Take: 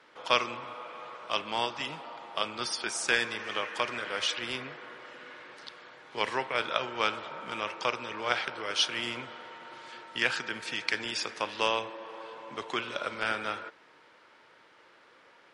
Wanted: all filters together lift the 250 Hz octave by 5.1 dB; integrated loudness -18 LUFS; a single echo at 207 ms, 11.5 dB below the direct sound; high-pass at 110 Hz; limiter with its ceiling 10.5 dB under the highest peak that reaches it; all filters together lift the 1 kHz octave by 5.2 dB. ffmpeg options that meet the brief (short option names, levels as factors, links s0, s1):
-af "highpass=110,equalizer=f=250:t=o:g=6.5,equalizer=f=1000:t=o:g=6,alimiter=limit=0.158:level=0:latency=1,aecho=1:1:207:0.266,volume=4.73"